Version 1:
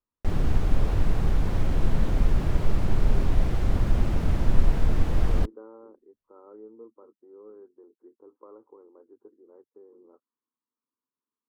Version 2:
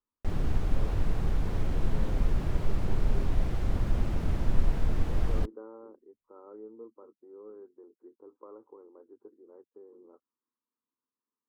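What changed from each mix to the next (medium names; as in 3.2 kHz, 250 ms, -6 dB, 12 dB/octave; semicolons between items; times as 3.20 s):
background -5.0 dB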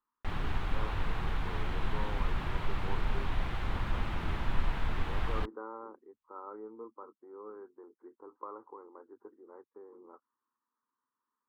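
background -6.0 dB; master: add high-order bell 1.8 kHz +12 dB 2.6 oct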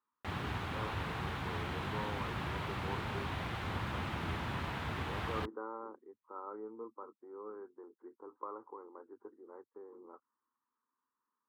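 background: add treble shelf 5.7 kHz +4 dB; master: add high-pass 77 Hz 24 dB/octave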